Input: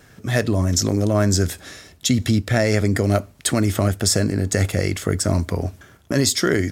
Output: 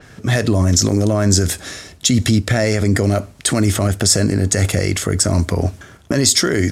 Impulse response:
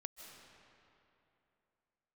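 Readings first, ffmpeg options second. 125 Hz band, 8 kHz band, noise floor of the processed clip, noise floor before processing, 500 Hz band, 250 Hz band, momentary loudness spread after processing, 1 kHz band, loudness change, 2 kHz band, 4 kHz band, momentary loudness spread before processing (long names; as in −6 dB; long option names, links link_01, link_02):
+4.0 dB, +6.5 dB, −43 dBFS, −50 dBFS, +2.0 dB, +3.5 dB, 6 LU, +2.0 dB, +4.0 dB, +3.0 dB, +5.5 dB, 7 LU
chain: -af "lowpass=10000,alimiter=level_in=11.5dB:limit=-1dB:release=50:level=0:latency=1,adynamicequalizer=threshold=0.0501:dfrequency=5600:dqfactor=0.7:tfrequency=5600:tqfactor=0.7:attack=5:release=100:ratio=0.375:range=3:mode=boostabove:tftype=highshelf,volume=-4.5dB"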